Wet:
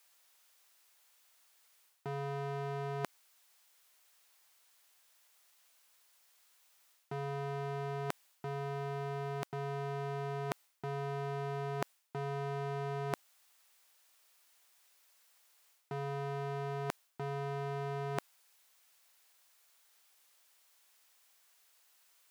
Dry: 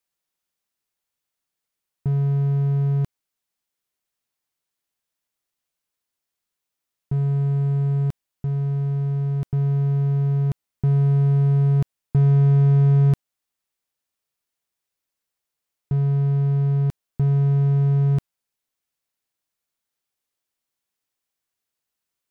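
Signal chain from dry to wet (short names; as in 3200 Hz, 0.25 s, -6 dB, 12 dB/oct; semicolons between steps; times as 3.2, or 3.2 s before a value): HPF 650 Hz 12 dB/oct; reverse; compressor 8:1, threshold -49 dBFS, peak gain reduction 15.5 dB; reverse; gain +15.5 dB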